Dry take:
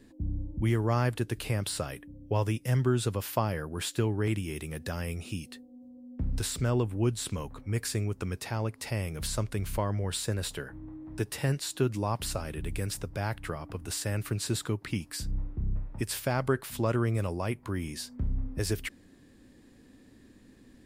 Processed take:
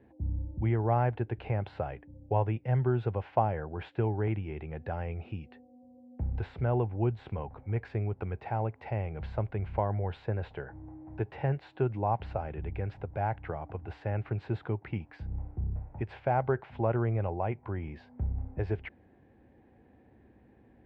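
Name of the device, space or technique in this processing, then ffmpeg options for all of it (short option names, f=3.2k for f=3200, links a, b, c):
bass cabinet: -af "highpass=65,equalizer=f=67:t=q:w=4:g=6,equalizer=f=180:t=q:w=4:g=-5,equalizer=f=270:t=q:w=4:g=-9,equalizer=f=780:t=q:w=4:g=10,equalizer=f=1.2k:t=q:w=4:g=-8,equalizer=f=1.8k:t=q:w=4:g=-5,lowpass=f=2.1k:w=0.5412,lowpass=f=2.1k:w=1.3066"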